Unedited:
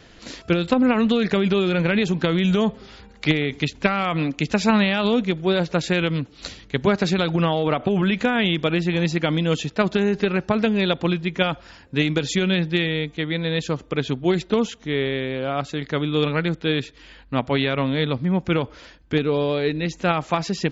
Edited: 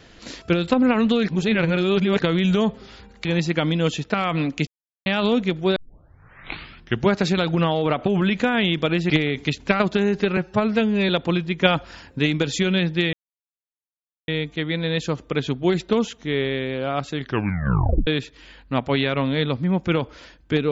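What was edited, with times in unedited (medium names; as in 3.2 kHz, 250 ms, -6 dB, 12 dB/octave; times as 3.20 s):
1.28–2.22 s: reverse
3.25–3.95 s: swap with 8.91–9.80 s
4.48–4.87 s: mute
5.57 s: tape start 1.35 s
10.37–10.85 s: stretch 1.5×
11.38–11.95 s: gain +3.5 dB
12.89 s: insert silence 1.15 s
15.79 s: tape stop 0.89 s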